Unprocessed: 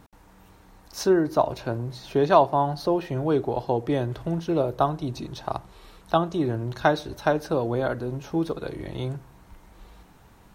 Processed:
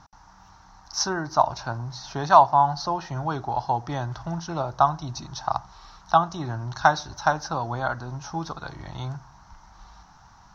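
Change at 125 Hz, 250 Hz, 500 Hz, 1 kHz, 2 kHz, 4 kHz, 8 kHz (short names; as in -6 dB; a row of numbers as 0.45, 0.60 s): -1.5 dB, -8.0 dB, -5.5 dB, +5.5 dB, +3.5 dB, +4.0 dB, n/a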